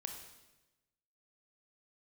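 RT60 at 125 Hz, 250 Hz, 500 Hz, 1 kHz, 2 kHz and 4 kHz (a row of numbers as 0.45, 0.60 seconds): 1.3, 1.2, 1.1, 1.0, 1.0, 1.0 seconds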